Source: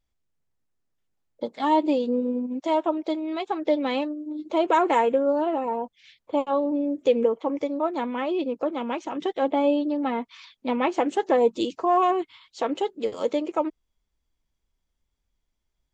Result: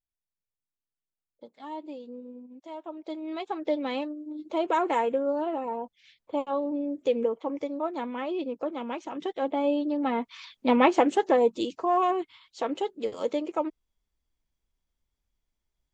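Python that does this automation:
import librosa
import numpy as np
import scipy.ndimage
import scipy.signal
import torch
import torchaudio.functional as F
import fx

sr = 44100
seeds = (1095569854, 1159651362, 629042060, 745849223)

y = fx.gain(x, sr, db=fx.line((2.78, -17.5), (3.29, -5.0), (9.57, -5.0), (10.8, 4.5), (11.56, -3.5)))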